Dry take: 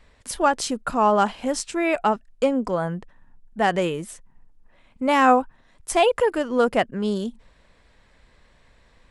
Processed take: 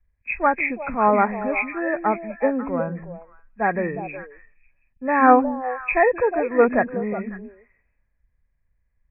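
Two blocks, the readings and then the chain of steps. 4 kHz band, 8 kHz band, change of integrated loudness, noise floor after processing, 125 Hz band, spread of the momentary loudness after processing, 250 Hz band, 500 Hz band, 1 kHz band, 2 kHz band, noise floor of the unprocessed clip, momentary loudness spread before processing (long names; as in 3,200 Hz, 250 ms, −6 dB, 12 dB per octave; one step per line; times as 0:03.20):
below −35 dB, below −40 dB, +1.0 dB, −69 dBFS, −1.0 dB, 14 LU, +0.5 dB, +1.0 dB, +1.0 dB, +4.0 dB, −58 dBFS, 15 LU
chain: hearing-aid frequency compression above 1,600 Hz 4 to 1
echo through a band-pass that steps 182 ms, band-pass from 220 Hz, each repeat 1.4 octaves, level −2.5 dB
multiband upward and downward expander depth 70%
level −1.5 dB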